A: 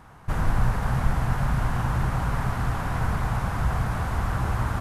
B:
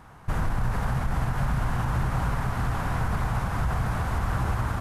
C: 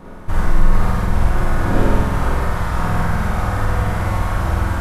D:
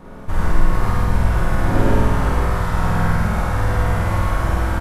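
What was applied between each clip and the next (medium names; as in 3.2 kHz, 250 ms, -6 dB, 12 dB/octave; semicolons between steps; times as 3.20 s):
peak limiter -17 dBFS, peak gain reduction 8 dB
wind noise 410 Hz -37 dBFS; flutter echo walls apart 8.3 m, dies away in 1.3 s; reverberation RT60 0.40 s, pre-delay 3 ms, DRR 1.5 dB; trim +1.5 dB
delay 115 ms -3 dB; trim -2 dB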